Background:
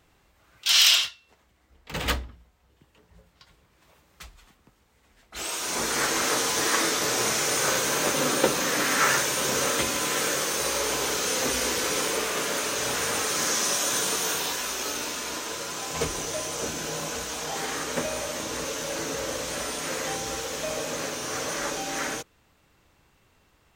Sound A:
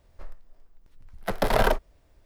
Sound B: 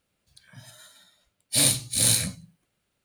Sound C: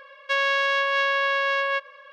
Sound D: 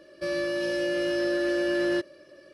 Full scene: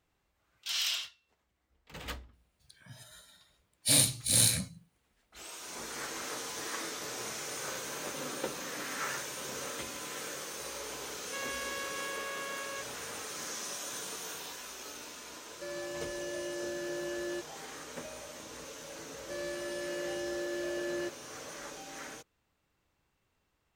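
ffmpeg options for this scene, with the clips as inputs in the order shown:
-filter_complex "[4:a]asplit=2[s0][s1];[0:a]volume=0.188[s2];[2:a]atrim=end=3.04,asetpts=PTS-STARTPTS,volume=0.631,afade=t=in:d=0.004:c=hsin,afade=t=out:st=3.036:d=0.004:c=hsin,adelay=2330[s3];[3:a]atrim=end=2.12,asetpts=PTS-STARTPTS,volume=0.126,afade=t=in:d=0.004:c=hsin,afade=t=out:st=2.116:d=0.004:c=hsin,adelay=11030[s4];[s0]atrim=end=2.53,asetpts=PTS-STARTPTS,volume=0.251,afade=t=in:d=0.004:c=hsin,afade=t=out:st=2.526:d=0.004:c=hsin,adelay=679140S[s5];[s1]atrim=end=2.53,asetpts=PTS-STARTPTS,volume=0.299,afade=t=in:d=0.004:c=hsin,afade=t=out:st=2.526:d=0.004:c=hsin,adelay=841428S[s6];[s2][s3][s4][s5][s6]amix=inputs=5:normalize=0"

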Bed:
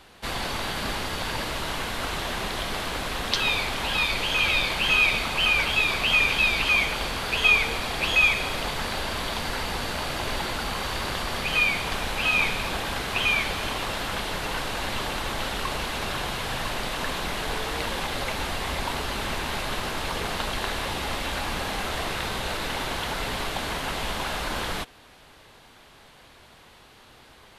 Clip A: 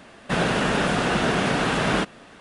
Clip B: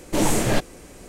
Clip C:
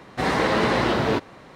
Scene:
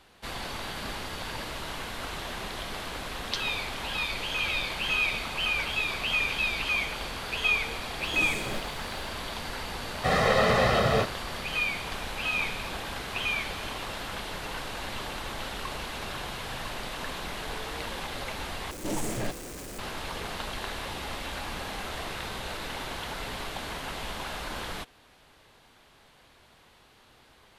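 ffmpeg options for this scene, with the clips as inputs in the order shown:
-filter_complex "[2:a]asplit=2[s0][s1];[0:a]volume=0.473[s2];[s0]acrusher=bits=6:mix=0:aa=0.000001[s3];[3:a]aecho=1:1:1.6:0.94[s4];[s1]aeval=exprs='val(0)+0.5*0.075*sgn(val(0))':c=same[s5];[s2]asplit=2[s6][s7];[s6]atrim=end=18.714[s8];[s5]atrim=end=1.08,asetpts=PTS-STARTPTS,volume=0.224[s9];[s7]atrim=start=19.786[s10];[s3]atrim=end=1.08,asetpts=PTS-STARTPTS,volume=0.168,afade=t=in:d=0.004:c=hsin,afade=t=out:st=1.076:d=0.004:c=hsin,adelay=8000[s11];[s4]atrim=end=1.55,asetpts=PTS-STARTPTS,volume=0.631,afade=t=in:d=0.004:c=hsin,afade=t=out:st=1.546:d=0.004:c=hsin,adelay=434826S[s12];[s8][s9]acrossfade=d=0.004:c1=hsin:c2=hsin[s13];[s13][s10]acrossfade=d=0.004:c1=hsin:c2=hsin[s14];[s14][s11][s12]amix=inputs=3:normalize=0"

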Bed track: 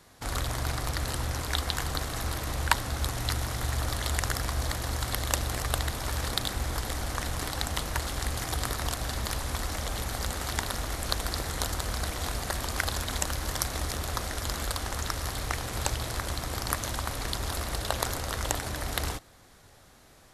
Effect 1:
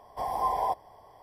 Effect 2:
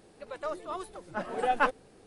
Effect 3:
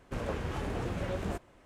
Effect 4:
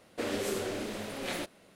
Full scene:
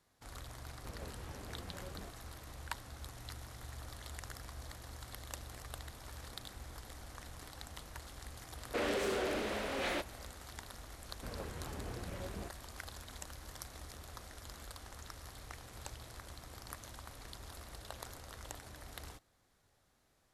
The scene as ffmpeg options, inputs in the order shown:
-filter_complex "[3:a]asplit=2[s0][s1];[0:a]volume=0.126[s2];[4:a]asplit=2[s3][s4];[s4]highpass=f=720:p=1,volume=7.08,asoftclip=type=tanh:threshold=0.1[s5];[s3][s5]amix=inputs=2:normalize=0,lowpass=f=2000:p=1,volume=0.501[s6];[s0]atrim=end=1.65,asetpts=PTS-STARTPTS,volume=0.178,afade=t=in:d=0.004:c=hsin,afade=t=out:st=1.646:d=0.004:c=hsin,adelay=730[s7];[s6]atrim=end=1.75,asetpts=PTS-STARTPTS,volume=0.596,afade=t=in:d=0.004:c=hsin,afade=t=out:st=1.746:d=0.004:c=hsin,adelay=8560[s8];[s1]atrim=end=1.65,asetpts=PTS-STARTPTS,volume=0.299,afade=t=in:d=0.004:c=hsin,afade=t=out:st=1.646:d=0.004:c=hsin,adelay=11110[s9];[s2][s7][s8][s9]amix=inputs=4:normalize=0"

